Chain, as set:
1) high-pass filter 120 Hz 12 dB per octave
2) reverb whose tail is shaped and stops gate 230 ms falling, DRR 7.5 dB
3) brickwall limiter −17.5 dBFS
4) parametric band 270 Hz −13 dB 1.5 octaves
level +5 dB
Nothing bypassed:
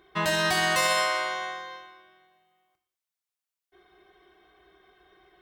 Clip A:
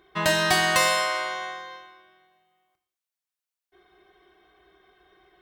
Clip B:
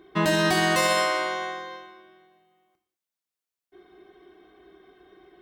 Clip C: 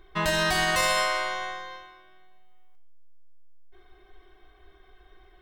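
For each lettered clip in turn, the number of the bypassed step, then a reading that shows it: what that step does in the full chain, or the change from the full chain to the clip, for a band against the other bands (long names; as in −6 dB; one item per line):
3, change in crest factor +4.0 dB
4, 250 Hz band +8.5 dB
1, 125 Hz band +1.5 dB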